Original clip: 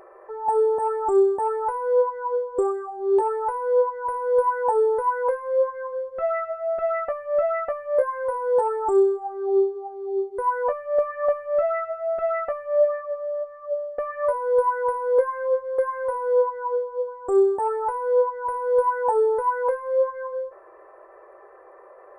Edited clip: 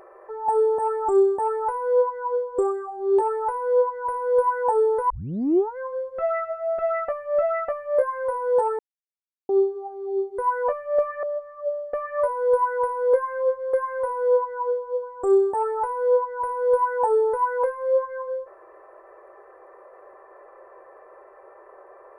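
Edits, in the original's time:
5.10 s: tape start 0.68 s
8.79–9.49 s: mute
11.23–13.28 s: delete

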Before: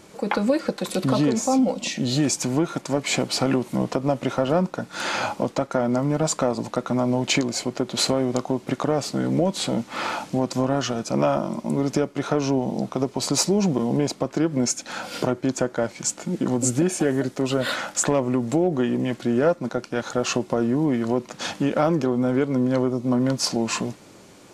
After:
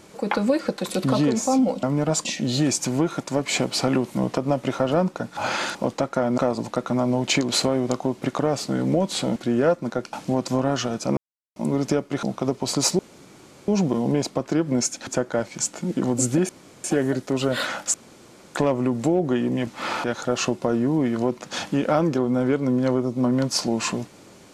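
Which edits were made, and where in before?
4.95–5.33 s: reverse
5.96–6.38 s: move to 1.83 s
7.49–7.94 s: delete
9.81–10.18 s: swap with 19.15–19.92 s
11.22–11.61 s: mute
12.28–12.77 s: delete
13.53 s: insert room tone 0.69 s
14.92–15.51 s: delete
16.93 s: insert room tone 0.35 s
18.03 s: insert room tone 0.61 s

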